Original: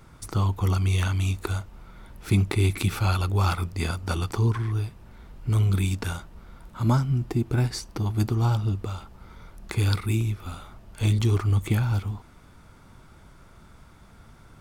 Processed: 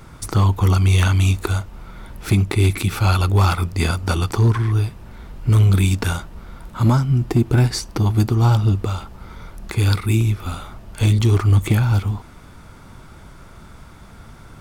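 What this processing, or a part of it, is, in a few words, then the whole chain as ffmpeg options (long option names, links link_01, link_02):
limiter into clipper: -af "alimiter=limit=-15dB:level=0:latency=1:release=443,asoftclip=type=hard:threshold=-17.5dB,volume=9dB"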